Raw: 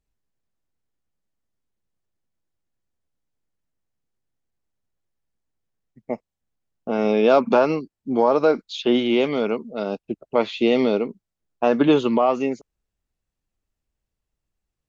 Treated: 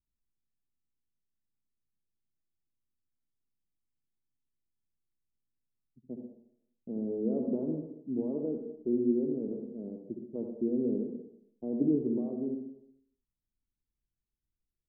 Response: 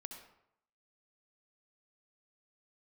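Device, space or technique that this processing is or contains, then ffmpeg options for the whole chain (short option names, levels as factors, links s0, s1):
next room: -filter_complex "[0:a]lowpass=f=370:w=0.5412,lowpass=f=370:w=1.3066[s0];[1:a]atrim=start_sample=2205[s1];[s0][s1]afir=irnorm=-1:irlink=0,volume=0.631"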